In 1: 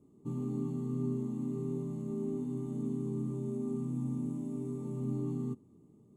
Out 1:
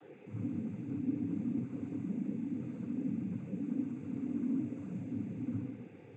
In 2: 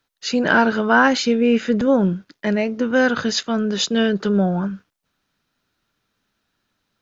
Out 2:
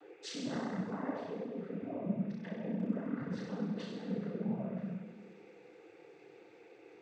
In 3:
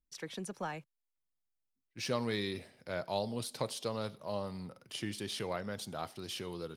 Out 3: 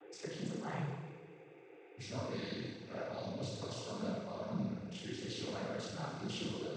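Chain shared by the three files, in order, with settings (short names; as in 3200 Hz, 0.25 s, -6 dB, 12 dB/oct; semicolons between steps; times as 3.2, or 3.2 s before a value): treble ducked by the level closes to 900 Hz, closed at -17 dBFS; low shelf 220 Hz +10.5 dB; limiter -15.5 dBFS; reverse; compressor 6:1, threshold -35 dBFS; reverse; buzz 400 Hz, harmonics 7, -51 dBFS -9 dB/oct; crackle 29/s -55 dBFS; resonator 530 Hz, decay 0.39 s, mix 50%; on a send: flutter echo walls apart 5.5 m, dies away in 1.3 s; on the sum: noise vocoder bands 16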